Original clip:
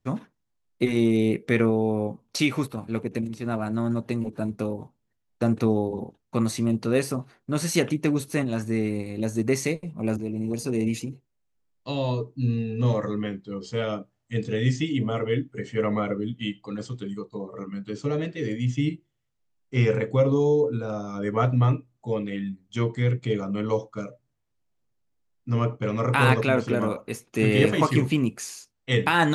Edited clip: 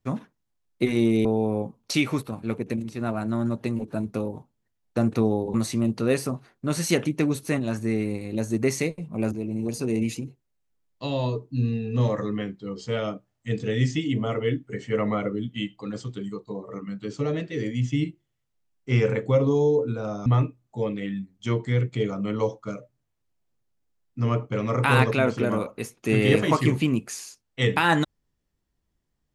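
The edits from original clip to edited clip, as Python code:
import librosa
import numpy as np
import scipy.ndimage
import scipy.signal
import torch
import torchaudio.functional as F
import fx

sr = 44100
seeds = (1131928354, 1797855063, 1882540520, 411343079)

y = fx.edit(x, sr, fx.cut(start_s=1.25, length_s=0.45),
    fx.cut(start_s=5.99, length_s=0.4),
    fx.cut(start_s=21.11, length_s=0.45), tone=tone)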